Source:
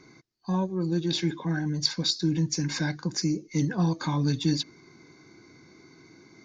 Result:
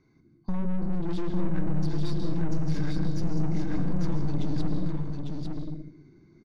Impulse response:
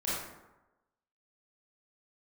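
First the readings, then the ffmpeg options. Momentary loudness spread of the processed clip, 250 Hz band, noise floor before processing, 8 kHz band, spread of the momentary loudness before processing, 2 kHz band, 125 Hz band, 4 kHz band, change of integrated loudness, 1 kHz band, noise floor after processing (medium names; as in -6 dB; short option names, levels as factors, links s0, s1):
7 LU, -2.0 dB, -56 dBFS, no reading, 4 LU, -9.5 dB, -0.5 dB, -17.5 dB, -3.5 dB, -4.5 dB, -61 dBFS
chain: -filter_complex "[0:a]alimiter=limit=0.119:level=0:latency=1:release=177,agate=range=0.316:threshold=0.00355:ratio=16:detection=peak,asplit=2[s0][s1];[s1]lowshelf=f=450:t=q:w=1.5:g=10[s2];[1:a]atrim=start_sample=2205,adelay=108[s3];[s2][s3]afir=irnorm=-1:irlink=0,volume=0.251[s4];[s0][s4]amix=inputs=2:normalize=0,aeval=exprs='(tanh(28.2*val(0)+0.7)-tanh(0.7))/28.2':c=same,aemphasis=mode=reproduction:type=bsi,acompressor=threshold=0.0631:ratio=2,aecho=1:1:850:0.631,volume=0.891"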